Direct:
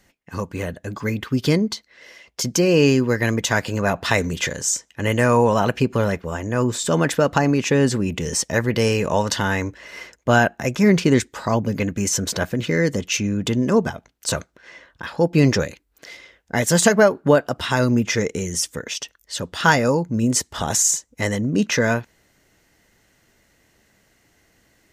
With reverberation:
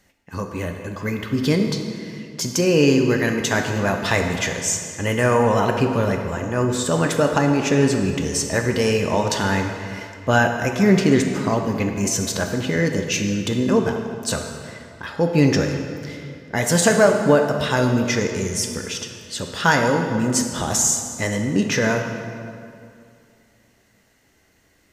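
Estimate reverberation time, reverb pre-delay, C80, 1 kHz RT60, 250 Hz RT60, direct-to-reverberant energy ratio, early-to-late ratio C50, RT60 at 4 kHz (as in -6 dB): 2.4 s, 3 ms, 6.0 dB, 2.4 s, 2.5 s, 3.0 dB, 5.0 dB, 1.7 s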